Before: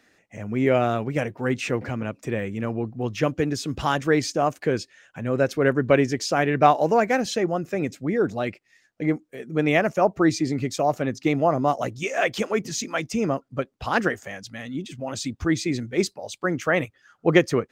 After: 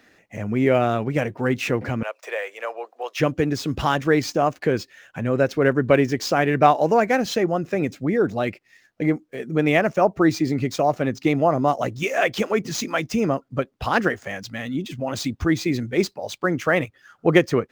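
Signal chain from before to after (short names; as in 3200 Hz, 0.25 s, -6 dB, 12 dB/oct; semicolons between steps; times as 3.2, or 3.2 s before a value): median filter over 5 samples; 2.03–3.2 steep high-pass 520 Hz 36 dB/oct; in parallel at -1 dB: compressor, threshold -29 dBFS, peak gain reduction 17.5 dB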